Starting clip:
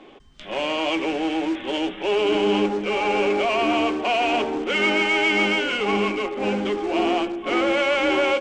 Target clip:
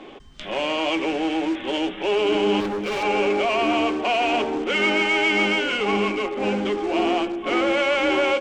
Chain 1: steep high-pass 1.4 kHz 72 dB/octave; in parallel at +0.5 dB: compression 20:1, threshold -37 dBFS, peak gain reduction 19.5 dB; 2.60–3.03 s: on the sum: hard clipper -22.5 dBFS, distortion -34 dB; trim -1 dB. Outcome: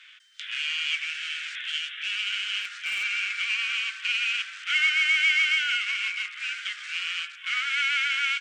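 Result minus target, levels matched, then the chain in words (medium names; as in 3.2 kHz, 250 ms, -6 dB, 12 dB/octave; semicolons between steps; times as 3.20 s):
1 kHz band -11.5 dB
in parallel at +0.5 dB: compression 20:1, threshold -37 dBFS, peak gain reduction 21 dB; 2.60–3.03 s: on the sum: hard clipper -22.5 dBFS, distortion -21 dB; trim -1 dB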